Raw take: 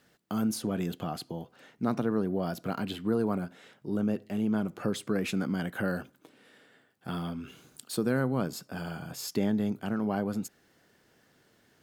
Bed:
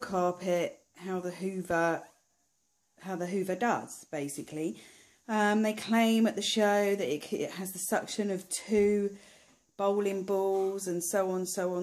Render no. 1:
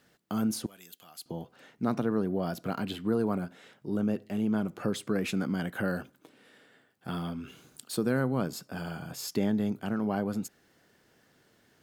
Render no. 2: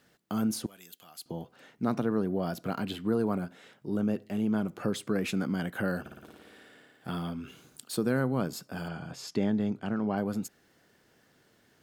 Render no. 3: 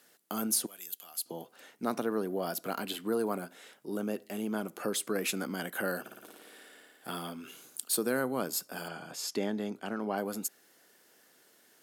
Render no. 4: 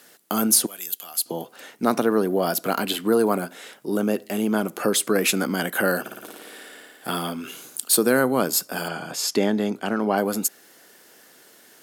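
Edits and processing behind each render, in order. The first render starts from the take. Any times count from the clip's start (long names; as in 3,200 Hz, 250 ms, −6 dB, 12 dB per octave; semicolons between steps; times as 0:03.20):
0:00.66–0:01.26: first-order pre-emphasis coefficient 0.97
0:06.00–0:07.11: flutter between parallel walls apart 9.6 metres, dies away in 1.5 s; 0:08.88–0:10.18: high-frequency loss of the air 69 metres
high-pass filter 310 Hz 12 dB per octave; parametric band 12,000 Hz +13 dB 1.4 octaves
level +11.5 dB; brickwall limiter −3 dBFS, peak gain reduction 3 dB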